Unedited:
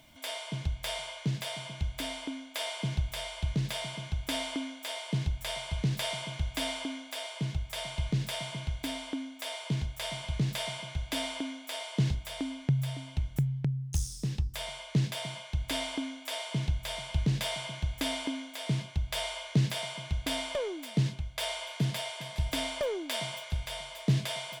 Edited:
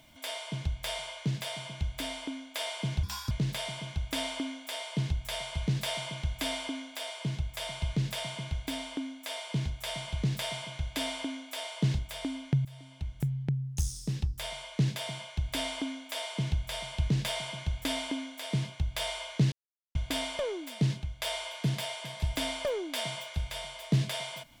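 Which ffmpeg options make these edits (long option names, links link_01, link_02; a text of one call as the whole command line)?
ffmpeg -i in.wav -filter_complex "[0:a]asplit=6[link_01][link_02][link_03][link_04][link_05][link_06];[link_01]atrim=end=3.034[link_07];[link_02]atrim=start=3.03:end=3.47,asetpts=PTS-STARTPTS,asetrate=69237,aresample=44100,atrim=end_sample=12359,asetpts=PTS-STARTPTS[link_08];[link_03]atrim=start=3.466:end=12.81,asetpts=PTS-STARTPTS,afade=type=out:start_time=9.34:duration=0.004:curve=hsin:silence=0.149624[link_09];[link_04]atrim=start=12.81:end=19.68,asetpts=PTS-STARTPTS,afade=type=in:duration=0.83:silence=0.149624,afade=type=out:start_time=6.866:duration=0.004:curve=hsin[link_10];[link_05]atrim=start=19.68:end=20.11,asetpts=PTS-STARTPTS,volume=0[link_11];[link_06]atrim=start=20.11,asetpts=PTS-STARTPTS,afade=type=in:duration=0.004:curve=hsin[link_12];[link_07][link_08]acrossfade=duration=0.004:curve1=hsin:curve2=hsin[link_13];[link_09][link_10][link_11][link_12]concat=n=4:v=0:a=1[link_14];[link_13][link_14]acrossfade=duration=0.004:curve1=hsin:curve2=hsin" out.wav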